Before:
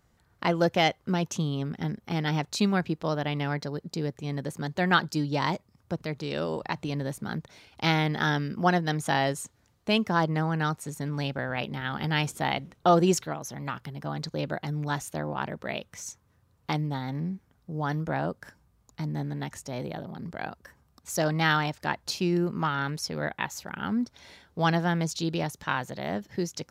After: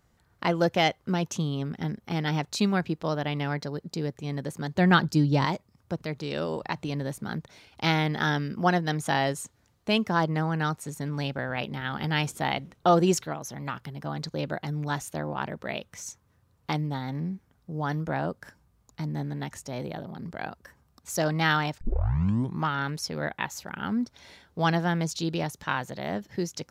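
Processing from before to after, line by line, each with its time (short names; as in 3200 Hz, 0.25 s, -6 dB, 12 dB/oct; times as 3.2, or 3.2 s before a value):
4.76–5.45 low shelf 280 Hz +10 dB
21.81 tape start 0.84 s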